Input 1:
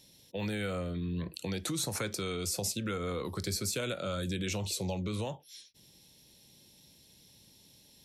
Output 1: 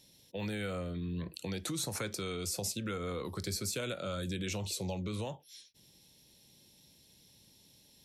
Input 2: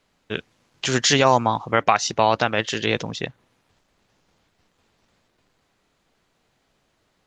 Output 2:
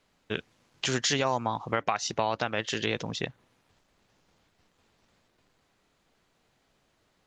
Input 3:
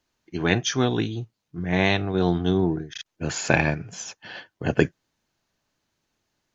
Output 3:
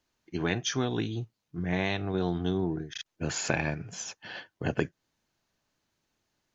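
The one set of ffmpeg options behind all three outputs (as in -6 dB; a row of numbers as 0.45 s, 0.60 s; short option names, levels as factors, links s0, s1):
-af "acompressor=threshold=0.0631:ratio=2.5,volume=0.75"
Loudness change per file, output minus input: -2.5 LU, -9.0 LU, -7.5 LU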